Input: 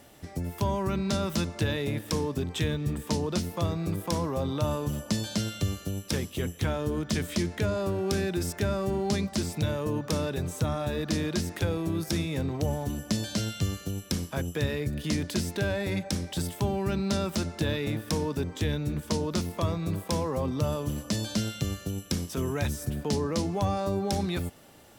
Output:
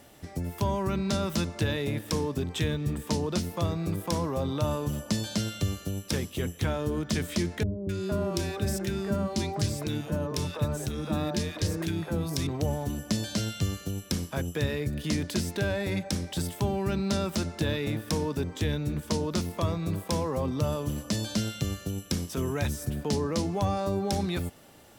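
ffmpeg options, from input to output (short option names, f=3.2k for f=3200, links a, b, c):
-filter_complex "[0:a]asettb=1/sr,asplit=3[a][b][c];[a]atrim=end=7.634[d];[b]atrim=start=7.63:end=12.47,asetpts=PTS-STARTPTS,afade=t=in:d=0.004:c=qsin,afade=t=out:st=4.836:d=0.004:c=qsin,acrossover=split=430|1600[e][f][g];[g]adelay=260[h];[f]adelay=460[i];[e][i][h]amix=inputs=3:normalize=0,atrim=end_sample=213444[j];[c]atrim=start=12.466[k];[d][j]acrossfade=d=0.004:c1=hsin:c2=qsin[l];[l][k]acrossfade=d=0.004:c1=qsin:c2=hsin"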